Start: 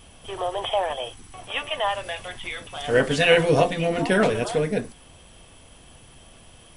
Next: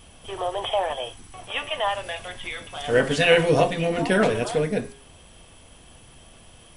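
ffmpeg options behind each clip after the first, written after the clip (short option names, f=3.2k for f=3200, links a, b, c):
-af "bandreject=f=136.3:t=h:w=4,bandreject=f=272.6:t=h:w=4,bandreject=f=408.9:t=h:w=4,bandreject=f=545.2:t=h:w=4,bandreject=f=681.5:t=h:w=4,bandreject=f=817.8:t=h:w=4,bandreject=f=954.1:t=h:w=4,bandreject=f=1.0904k:t=h:w=4,bandreject=f=1.2267k:t=h:w=4,bandreject=f=1.363k:t=h:w=4,bandreject=f=1.4993k:t=h:w=4,bandreject=f=1.6356k:t=h:w=4,bandreject=f=1.7719k:t=h:w=4,bandreject=f=1.9082k:t=h:w=4,bandreject=f=2.0445k:t=h:w=4,bandreject=f=2.1808k:t=h:w=4,bandreject=f=2.3171k:t=h:w=4,bandreject=f=2.4534k:t=h:w=4,bandreject=f=2.5897k:t=h:w=4,bandreject=f=2.726k:t=h:w=4,bandreject=f=2.8623k:t=h:w=4,bandreject=f=2.9986k:t=h:w=4,bandreject=f=3.1349k:t=h:w=4,bandreject=f=3.2712k:t=h:w=4,bandreject=f=3.4075k:t=h:w=4,bandreject=f=3.5438k:t=h:w=4,bandreject=f=3.6801k:t=h:w=4,bandreject=f=3.8164k:t=h:w=4,bandreject=f=3.9527k:t=h:w=4,bandreject=f=4.089k:t=h:w=4,bandreject=f=4.2253k:t=h:w=4,bandreject=f=4.3616k:t=h:w=4,bandreject=f=4.4979k:t=h:w=4,bandreject=f=4.6342k:t=h:w=4,bandreject=f=4.7705k:t=h:w=4,bandreject=f=4.9068k:t=h:w=4,bandreject=f=5.0431k:t=h:w=4,bandreject=f=5.1794k:t=h:w=4"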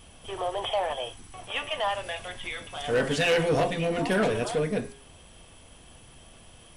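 -af "asoftclip=type=tanh:threshold=-16dB,volume=-2dB"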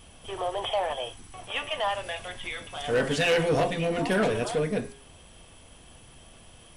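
-af anull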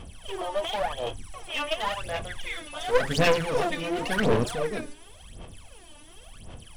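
-af "aphaser=in_gain=1:out_gain=1:delay=3.4:decay=0.79:speed=0.92:type=sinusoidal,aeval=exprs='clip(val(0),-1,0.0501)':c=same,volume=-2.5dB"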